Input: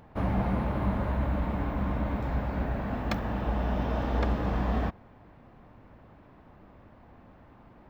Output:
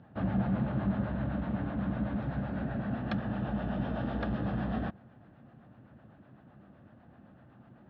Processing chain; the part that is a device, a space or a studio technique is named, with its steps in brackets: guitar amplifier with harmonic tremolo (harmonic tremolo 7.9 Hz, depth 50%, crossover 460 Hz; saturation -21.5 dBFS, distortion -20 dB; cabinet simulation 94–3800 Hz, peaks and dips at 130 Hz +7 dB, 210 Hz +5 dB, 440 Hz -5 dB, 990 Hz -9 dB, 1.6 kHz +3 dB, 2.2 kHz -9 dB)

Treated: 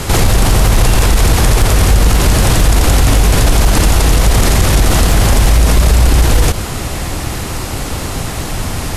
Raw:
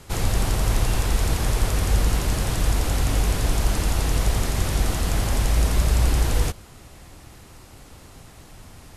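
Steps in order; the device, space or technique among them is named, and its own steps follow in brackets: loud club master (compression 3:1, threshold -21 dBFS, peak gain reduction 6 dB; hard clipper -16.5 dBFS, distortion -28 dB; loudness maximiser +26.5 dB); trim -1 dB

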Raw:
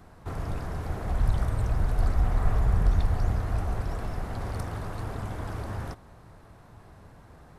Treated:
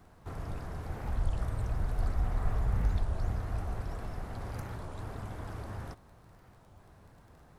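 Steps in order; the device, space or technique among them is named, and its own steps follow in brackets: warped LP (warped record 33 1/3 rpm, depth 250 cents; crackle 20 per s -44 dBFS; pink noise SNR 43 dB); trim -6.5 dB

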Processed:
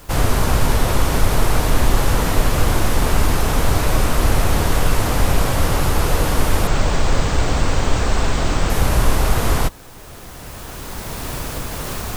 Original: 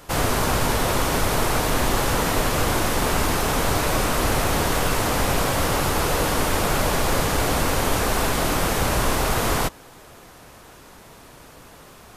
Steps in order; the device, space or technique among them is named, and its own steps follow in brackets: bass shelf 120 Hz +11.5 dB; 6.67–8.70 s: elliptic low-pass 8.1 kHz, stop band 40 dB; cheap recorder with automatic gain (white noise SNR 35 dB; recorder AGC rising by 9.5 dB/s)

